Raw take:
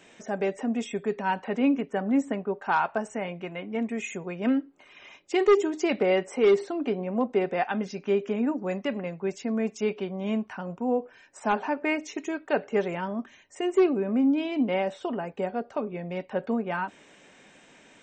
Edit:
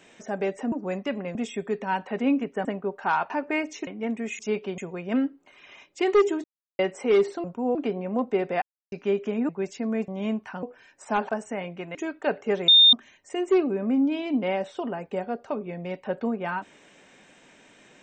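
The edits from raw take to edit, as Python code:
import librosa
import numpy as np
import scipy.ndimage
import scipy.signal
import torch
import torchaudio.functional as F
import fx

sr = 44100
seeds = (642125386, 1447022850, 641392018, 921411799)

y = fx.edit(x, sr, fx.cut(start_s=2.02, length_s=0.26),
    fx.swap(start_s=2.93, length_s=0.66, other_s=11.64, other_length_s=0.57),
    fx.silence(start_s=5.77, length_s=0.35),
    fx.silence(start_s=7.64, length_s=0.3),
    fx.move(start_s=8.51, length_s=0.63, to_s=0.72),
    fx.move(start_s=9.73, length_s=0.39, to_s=4.11),
    fx.move(start_s=10.67, length_s=0.31, to_s=6.77),
    fx.bleep(start_s=12.94, length_s=0.25, hz=3640.0, db=-11.0), tone=tone)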